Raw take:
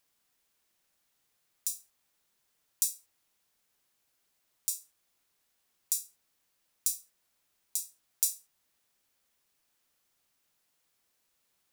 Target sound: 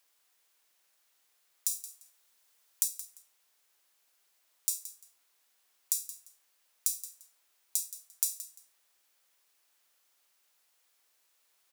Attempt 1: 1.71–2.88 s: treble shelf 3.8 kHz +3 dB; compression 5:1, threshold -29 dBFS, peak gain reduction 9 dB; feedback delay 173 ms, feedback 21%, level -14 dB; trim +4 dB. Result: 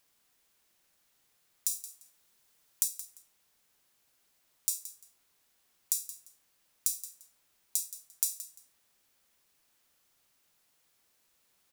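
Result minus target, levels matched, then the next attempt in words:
500 Hz band +3.5 dB
1.71–2.88 s: treble shelf 3.8 kHz +3 dB; compression 5:1, threshold -29 dBFS, peak gain reduction 9 dB; Bessel high-pass 540 Hz, order 2; feedback delay 173 ms, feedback 21%, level -14 dB; trim +4 dB

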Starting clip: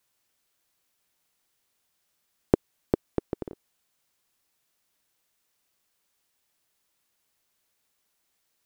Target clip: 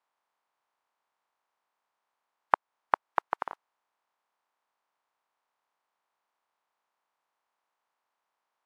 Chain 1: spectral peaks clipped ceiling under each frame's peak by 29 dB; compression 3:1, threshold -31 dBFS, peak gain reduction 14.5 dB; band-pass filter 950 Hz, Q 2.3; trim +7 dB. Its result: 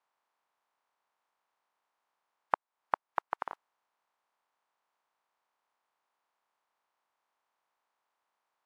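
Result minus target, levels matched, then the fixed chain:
compression: peak gain reduction +6.5 dB
spectral peaks clipped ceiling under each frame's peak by 29 dB; compression 3:1, threshold -21.5 dBFS, peak gain reduction 8 dB; band-pass filter 950 Hz, Q 2.3; trim +7 dB

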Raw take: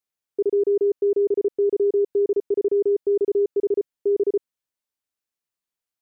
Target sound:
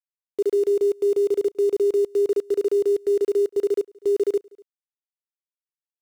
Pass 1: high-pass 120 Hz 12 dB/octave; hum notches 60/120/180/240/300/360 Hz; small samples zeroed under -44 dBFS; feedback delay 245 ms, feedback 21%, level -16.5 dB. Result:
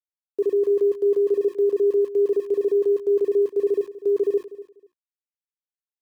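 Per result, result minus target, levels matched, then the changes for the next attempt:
echo-to-direct +10 dB; small samples zeroed: distortion -9 dB
change: feedback delay 245 ms, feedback 21%, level -26.5 dB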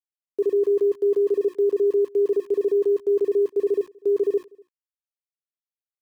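small samples zeroed: distortion -9 dB
change: small samples zeroed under -34 dBFS

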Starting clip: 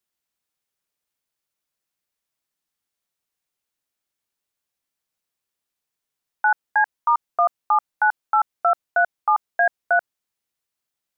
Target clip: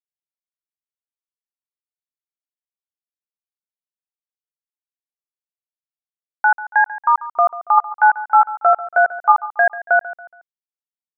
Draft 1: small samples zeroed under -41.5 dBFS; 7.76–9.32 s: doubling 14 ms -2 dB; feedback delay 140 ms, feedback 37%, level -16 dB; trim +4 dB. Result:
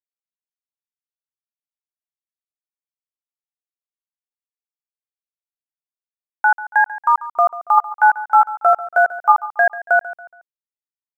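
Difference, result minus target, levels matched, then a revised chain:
small samples zeroed: distortion +13 dB
small samples zeroed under -53 dBFS; 7.76–9.32 s: doubling 14 ms -2 dB; feedback delay 140 ms, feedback 37%, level -16 dB; trim +4 dB

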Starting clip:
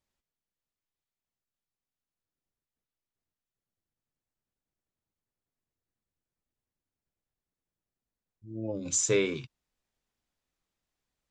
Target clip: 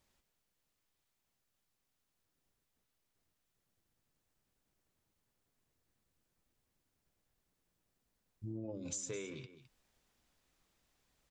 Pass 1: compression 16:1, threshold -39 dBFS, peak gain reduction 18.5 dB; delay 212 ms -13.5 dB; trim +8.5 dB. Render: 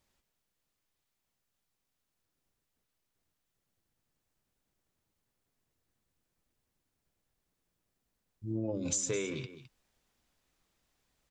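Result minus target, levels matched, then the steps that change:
compression: peak gain reduction -9 dB
change: compression 16:1, threshold -48.5 dBFS, peak gain reduction 27.5 dB

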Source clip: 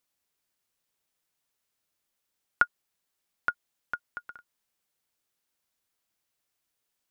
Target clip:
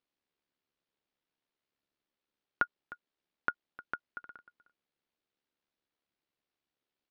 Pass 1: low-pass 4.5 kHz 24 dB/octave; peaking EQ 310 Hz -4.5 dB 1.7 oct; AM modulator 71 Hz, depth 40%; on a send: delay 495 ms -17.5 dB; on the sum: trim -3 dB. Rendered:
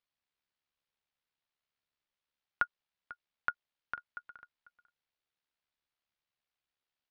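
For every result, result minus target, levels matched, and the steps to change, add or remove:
echo 188 ms late; 250 Hz band -8.5 dB
change: delay 307 ms -17.5 dB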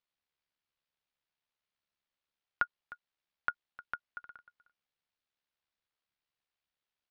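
250 Hz band -8.5 dB
change: peaking EQ 310 Hz +7.5 dB 1.7 oct

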